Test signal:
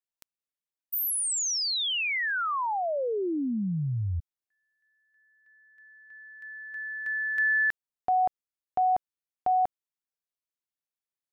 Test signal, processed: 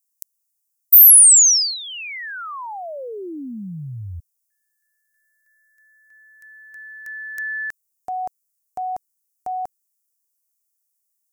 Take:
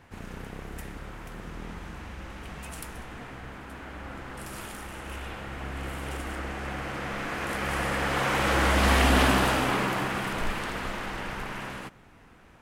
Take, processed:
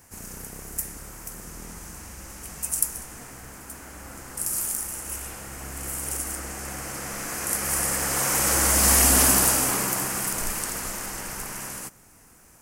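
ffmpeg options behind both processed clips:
-af "aexciter=amount=14.2:drive=2.6:freq=5.3k,volume=-2.5dB"

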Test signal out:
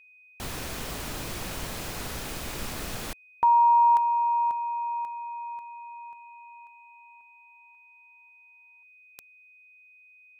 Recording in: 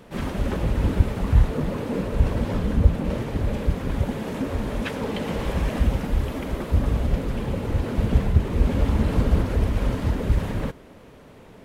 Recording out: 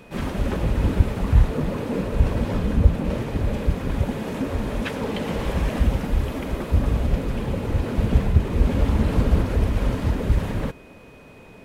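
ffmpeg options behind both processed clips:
-af "aeval=exprs='val(0)+0.002*sin(2*PI*2500*n/s)':c=same,volume=1dB"

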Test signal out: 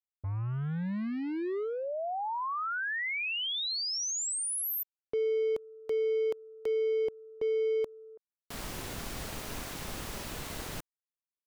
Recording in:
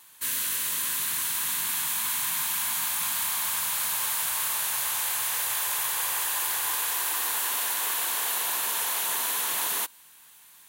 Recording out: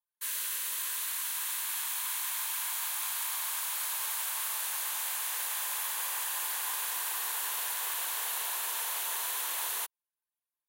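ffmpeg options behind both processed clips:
-filter_complex "[0:a]acrossover=split=360|5500[a][b][c];[a]acrusher=bits=5:mix=0:aa=0.5[d];[d][b][c]amix=inputs=3:normalize=0,anlmdn=0.1,volume=-6dB"

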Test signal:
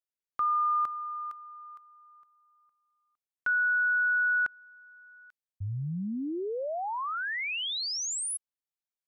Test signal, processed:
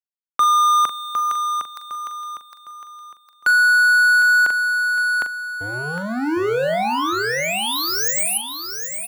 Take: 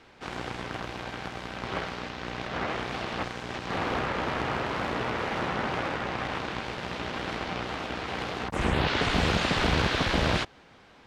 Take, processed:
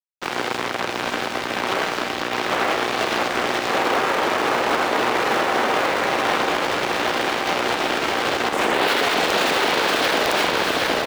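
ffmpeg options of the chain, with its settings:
-filter_complex "[0:a]tiltshelf=f=660:g=3.5,areverse,acompressor=mode=upward:threshold=-35dB:ratio=2.5:attack=14:release=695:knee=2.83:detection=peak,areverse,aeval=exprs='sgn(val(0))*max(abs(val(0))-0.0112,0)':c=same,aecho=1:1:758|1516|2274|3032:0.447|0.165|0.0612|0.0226,acrossover=split=290[a][b];[a]acompressor=threshold=-44dB:ratio=10:attack=0.28:release=92[c];[b]lowpass=f=3.2k:p=1[d];[c][d]amix=inputs=2:normalize=0,aemphasis=mode=production:type=bsi,asplit=2[e][f];[f]adelay=41,volume=-10.5dB[g];[e][g]amix=inputs=2:normalize=0,aeval=exprs='(mod(6.68*val(0)+1,2)-1)/6.68':c=same,alimiter=level_in=27dB:limit=-1dB:release=50:level=0:latency=1,volume=-9dB"

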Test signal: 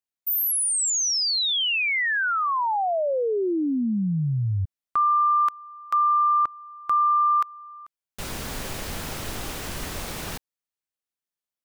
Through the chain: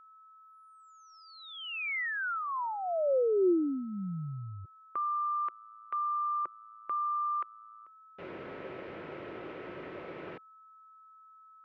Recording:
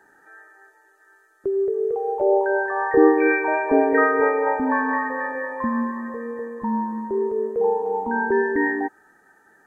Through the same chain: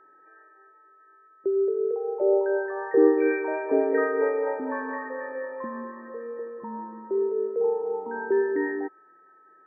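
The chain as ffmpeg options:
-af "highpass=210,equalizer=f=230:t=q:w=4:g=-7,equalizer=f=360:t=q:w=4:g=7,equalizer=f=530:t=q:w=4:g=4,equalizer=f=810:t=q:w=4:g=-7,equalizer=f=1.2k:t=q:w=4:g=-5,equalizer=f=1.7k:t=q:w=4:g=-4,lowpass=f=2.2k:w=0.5412,lowpass=f=2.2k:w=1.3066,aeval=exprs='val(0)+0.00398*sin(2*PI*1300*n/s)':c=same,volume=-6dB"

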